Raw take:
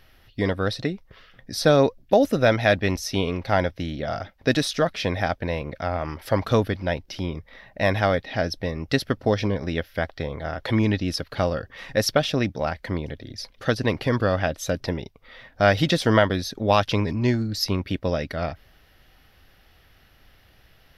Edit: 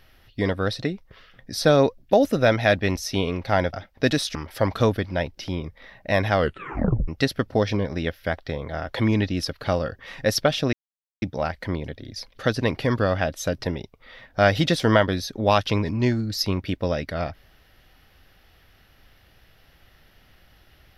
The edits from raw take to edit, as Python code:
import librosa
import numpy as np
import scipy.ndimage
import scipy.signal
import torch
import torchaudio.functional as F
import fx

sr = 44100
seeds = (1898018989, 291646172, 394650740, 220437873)

y = fx.edit(x, sr, fx.cut(start_s=3.73, length_s=0.44),
    fx.cut(start_s=4.79, length_s=1.27),
    fx.tape_stop(start_s=8.07, length_s=0.72),
    fx.insert_silence(at_s=12.44, length_s=0.49), tone=tone)